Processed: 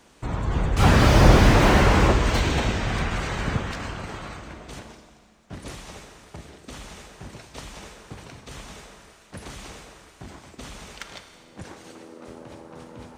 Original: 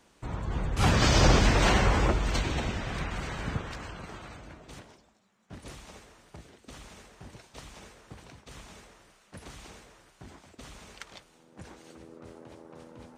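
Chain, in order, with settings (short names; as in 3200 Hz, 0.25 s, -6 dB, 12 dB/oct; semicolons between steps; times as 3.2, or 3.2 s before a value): 11.64–12.28 HPF 200 Hz 24 dB/oct; Schroeder reverb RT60 2 s, combs from 28 ms, DRR 7.5 dB; slew limiter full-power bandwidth 82 Hz; gain +7 dB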